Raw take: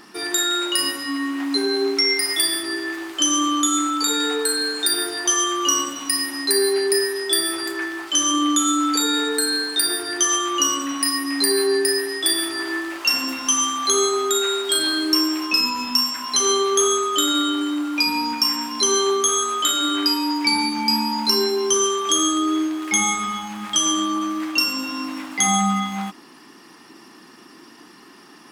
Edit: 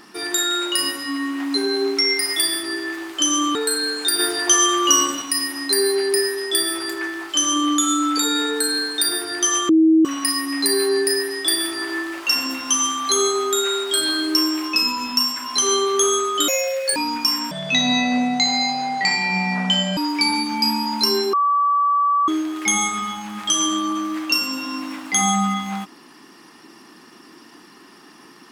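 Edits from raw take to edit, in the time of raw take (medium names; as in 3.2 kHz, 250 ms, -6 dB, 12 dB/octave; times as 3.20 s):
3.55–4.33 s: delete
4.97–6.00 s: gain +4 dB
10.47–10.83 s: bleep 320 Hz -10 dBFS
17.26–18.13 s: speed 181%
18.68–20.23 s: speed 63%
21.59–22.54 s: bleep 1.15 kHz -14.5 dBFS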